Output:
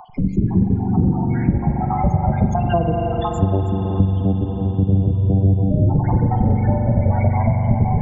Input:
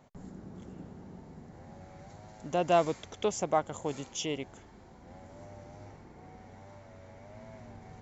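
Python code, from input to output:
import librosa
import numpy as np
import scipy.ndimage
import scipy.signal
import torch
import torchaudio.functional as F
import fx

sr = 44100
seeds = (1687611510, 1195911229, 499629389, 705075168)

y = fx.spec_dropout(x, sr, seeds[0], share_pct=62)
y = fx.recorder_agc(y, sr, target_db=-22.0, rise_db_per_s=45.0, max_gain_db=30)
y = fx.vocoder(y, sr, bands=4, carrier='saw', carrier_hz=97.0, at=(3.38, 5.71))
y = fx.high_shelf(y, sr, hz=5200.0, db=-9.5)
y = fx.echo_heads(y, sr, ms=101, heads='second and third', feedback_pct=46, wet_db=-13.5)
y = fx.spec_topn(y, sr, count=16)
y = fx.bass_treble(y, sr, bass_db=10, treble_db=3)
y = fx.rev_spring(y, sr, rt60_s=4.0, pass_ms=(42,), chirp_ms=40, drr_db=2.5)
y = fx.band_squash(y, sr, depth_pct=70)
y = y * librosa.db_to_amplitude(7.0)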